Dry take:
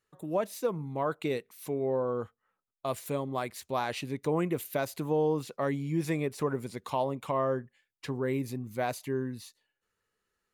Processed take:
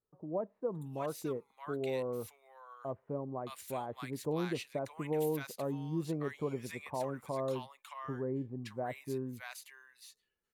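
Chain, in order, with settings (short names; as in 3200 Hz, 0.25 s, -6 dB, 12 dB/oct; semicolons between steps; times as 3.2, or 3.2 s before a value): bands offset in time lows, highs 0.62 s, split 1100 Hz; gain -5.5 dB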